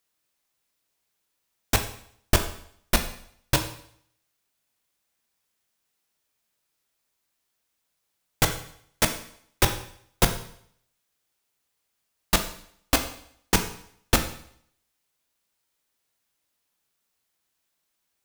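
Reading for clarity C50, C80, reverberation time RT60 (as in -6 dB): 10.5 dB, 13.0 dB, 0.65 s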